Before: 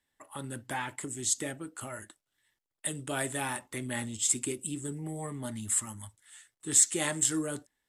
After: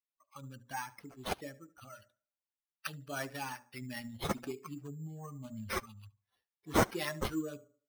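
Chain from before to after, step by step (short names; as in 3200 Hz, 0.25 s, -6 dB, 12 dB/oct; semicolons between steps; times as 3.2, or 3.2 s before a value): per-bin expansion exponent 2; notches 60/120/180/240/300/360/420/480/540/600 Hz; tape echo 72 ms, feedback 38%, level -18 dB, low-pass 2900 Hz; careless resampling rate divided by 6×, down none, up hold; gain -1.5 dB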